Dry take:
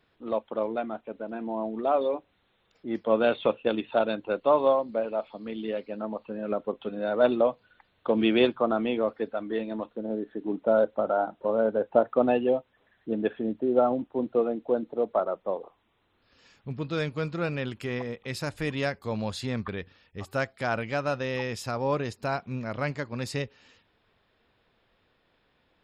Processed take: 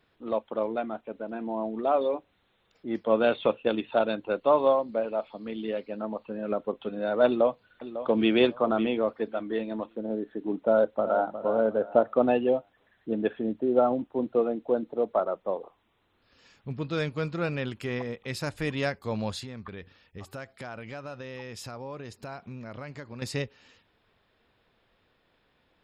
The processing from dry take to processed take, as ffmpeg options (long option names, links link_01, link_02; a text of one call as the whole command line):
ffmpeg -i in.wav -filter_complex "[0:a]asplit=2[link_01][link_02];[link_02]afade=type=in:start_time=7.26:duration=0.01,afade=type=out:start_time=8.32:duration=0.01,aecho=0:1:550|1100|1650:0.251189|0.0502377|0.0100475[link_03];[link_01][link_03]amix=inputs=2:normalize=0,asplit=2[link_04][link_05];[link_05]afade=type=in:start_time=10.7:duration=0.01,afade=type=out:start_time=11.34:duration=0.01,aecho=0:1:360|720|1080|1440:0.298538|0.104488|0.0365709|0.0127998[link_06];[link_04][link_06]amix=inputs=2:normalize=0,asettb=1/sr,asplit=3[link_07][link_08][link_09];[link_07]atrim=end=19.394[link_10];[link_08]atrim=start=19.39:end=23.22,asetpts=PTS-STARTPTS,afade=type=in:duration=0.004:curve=qsin,afade=type=out:start_time=3.826:duration=0.004:curve=qsin,acompressor=threshold=-37dB:ratio=4:attack=3.2:release=140:knee=1:detection=peak[link_11];[link_09]atrim=start=23.216[link_12];[link_10][link_11]acrossfade=duration=0.004:curve1=hsin:curve2=qsin[link_13];[link_13][link_12]acrossfade=duration=0.004:curve1=qsin:curve2=hsin" out.wav